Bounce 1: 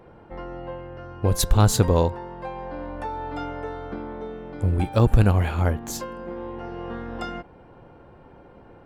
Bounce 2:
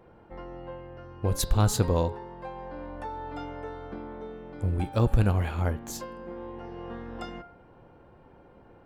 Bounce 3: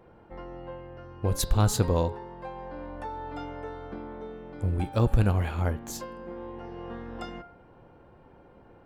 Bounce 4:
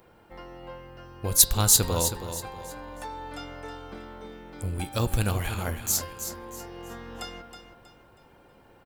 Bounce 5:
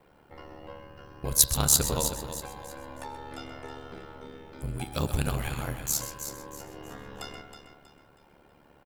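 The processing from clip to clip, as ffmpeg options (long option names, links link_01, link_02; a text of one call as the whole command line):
ffmpeg -i in.wav -af "bandreject=frequency=140.1:width_type=h:width=4,bandreject=frequency=280.2:width_type=h:width=4,bandreject=frequency=420.3:width_type=h:width=4,bandreject=frequency=560.4:width_type=h:width=4,bandreject=frequency=700.5:width_type=h:width=4,bandreject=frequency=840.6:width_type=h:width=4,bandreject=frequency=980.7:width_type=h:width=4,bandreject=frequency=1120.8:width_type=h:width=4,bandreject=frequency=1260.9:width_type=h:width=4,bandreject=frequency=1401:width_type=h:width=4,bandreject=frequency=1541.1:width_type=h:width=4,bandreject=frequency=1681.2:width_type=h:width=4,bandreject=frequency=1821.3:width_type=h:width=4,bandreject=frequency=1961.4:width_type=h:width=4,bandreject=frequency=2101.5:width_type=h:width=4,bandreject=frequency=2241.6:width_type=h:width=4,bandreject=frequency=2381.7:width_type=h:width=4,bandreject=frequency=2521.8:width_type=h:width=4,bandreject=frequency=2661.9:width_type=h:width=4,bandreject=frequency=2802:width_type=h:width=4,bandreject=frequency=2942.1:width_type=h:width=4,bandreject=frequency=3082.2:width_type=h:width=4,bandreject=frequency=3222.3:width_type=h:width=4,bandreject=frequency=3362.4:width_type=h:width=4,bandreject=frequency=3502.5:width_type=h:width=4,bandreject=frequency=3642.6:width_type=h:width=4,bandreject=frequency=3782.7:width_type=h:width=4,bandreject=frequency=3922.8:width_type=h:width=4,bandreject=frequency=4062.9:width_type=h:width=4,bandreject=frequency=4203:width_type=h:width=4,bandreject=frequency=4343.1:width_type=h:width=4,bandreject=frequency=4483.2:width_type=h:width=4,bandreject=frequency=4623.3:width_type=h:width=4,bandreject=frequency=4763.4:width_type=h:width=4,bandreject=frequency=4903.5:width_type=h:width=4,bandreject=frequency=5043.6:width_type=h:width=4,bandreject=frequency=5183.7:width_type=h:width=4,volume=-5.5dB" out.wav
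ffmpeg -i in.wav -af anull out.wav
ffmpeg -i in.wav -filter_complex "[0:a]crystalizer=i=7.5:c=0,asplit=2[link_01][link_02];[link_02]aecho=0:1:320|640|960|1280:0.335|0.114|0.0387|0.0132[link_03];[link_01][link_03]amix=inputs=2:normalize=0,volume=-4dB" out.wav
ffmpeg -i in.wav -filter_complex "[0:a]aeval=exprs='val(0)*sin(2*PI*36*n/s)':channel_layout=same,asplit=2[link_01][link_02];[link_02]adelay=128.3,volume=-10dB,highshelf=frequency=4000:gain=-2.89[link_03];[link_01][link_03]amix=inputs=2:normalize=0" out.wav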